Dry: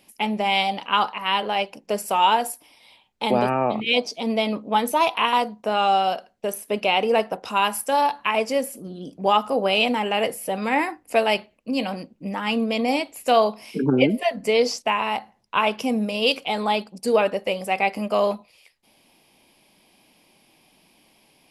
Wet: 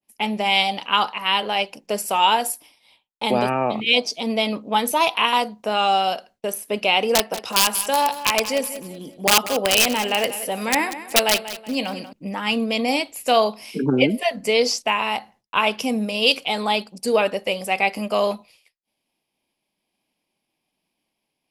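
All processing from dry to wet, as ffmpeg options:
-filter_complex "[0:a]asettb=1/sr,asplit=3[a][b][c];[a]atrim=end=7.134[d];[b]atrim=start=7.13:end=12.13,asetpts=PTS-STARTPTS,afade=t=in:d=0.004:c=qsin,afade=t=out:st=4.996:d=0.004:c=qsin,lowshelf=f=170:g=-3.5,aeval=exprs='(mod(3.35*val(0)+1,2)-1)/3.35':c=same,aecho=1:1:187|374|561|748:0.211|0.0803|0.0305|0.0116,atrim=end_sample=220500[e];[c]atrim=start=12.126[f];[d][e]acrossfade=d=0.004:c1=hsin:c2=qsin[g];[g][f]acrossfade=d=0.004:c1=qsin:c2=hsin,agate=range=-33dB:threshold=-46dB:ratio=3:detection=peak,adynamicequalizer=threshold=0.02:dfrequency=2200:dqfactor=0.7:tfrequency=2200:tqfactor=0.7:attack=5:release=100:ratio=0.375:range=3:mode=boostabove:tftype=highshelf"

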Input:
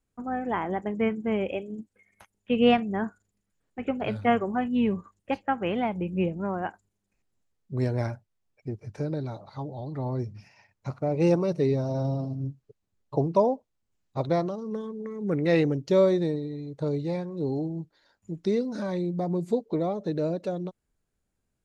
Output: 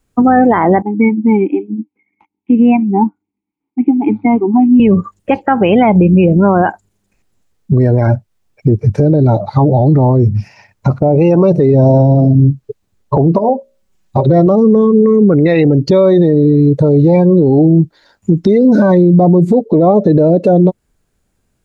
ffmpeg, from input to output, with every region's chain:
-filter_complex "[0:a]asettb=1/sr,asplit=3[a][b][c];[a]atrim=end=0.824[d];[b]atrim=start=0.82:end=4.8,asetpts=PTS-STARTPTS,afade=t=in:d=0.004:c=qsin,afade=t=out:st=3.976:d=0.004:c=qsin,asplit=3[e][f][g];[e]bandpass=f=300:t=q:w=8,volume=0dB[h];[f]bandpass=f=870:t=q:w=8,volume=-6dB[i];[g]bandpass=f=2.24k:t=q:w=8,volume=-9dB[j];[h][i][j]amix=inputs=3:normalize=0,highshelf=f=3.6k:g=-10[k];[c]atrim=start=4.796[l];[d][k]acrossfade=d=0.004:c1=hsin:c2=qsin[m];[m][l]acrossfade=d=0.004:c1=qsin:c2=hsin,asettb=1/sr,asplit=3[n][o][p];[n]atrim=end=13.384[q];[o]atrim=start=13.38:end=14.47,asetpts=PTS-STARTPTS,afade=t=in:d=0.004:c=qsin,afade=t=out:st=1.086:d=0.004:c=qsin,aecho=1:1:5.3:0.51,atrim=end_sample=48069,acompressor=threshold=-30dB:ratio=12:attack=3.2:release=140:knee=1:detection=peak,bandreject=f=60:t=h:w=6,bandreject=f=120:t=h:w=6,bandreject=f=180:t=h:w=6,bandreject=f=240:t=h:w=6,bandreject=f=300:t=h:w=6,bandreject=f=360:t=h:w=6,bandreject=f=420:t=h:w=6,bandreject=f=480:t=h:w=6,bandreject=f=540:t=h:w=6,bandreject=f=600:t=h:w=6[r];[p]atrim=start=14.466[s];[q][r]acrossfade=d=0.004:c1=hsin:c2=qsin[t];[t][s]acrossfade=d=0.004:c1=qsin:c2=hsin,afftdn=nr=18:nf=-36,acompressor=threshold=-39dB:ratio=2,alimiter=level_in=34.5dB:limit=-1dB:release=50:level=0:latency=1,volume=-1dB"

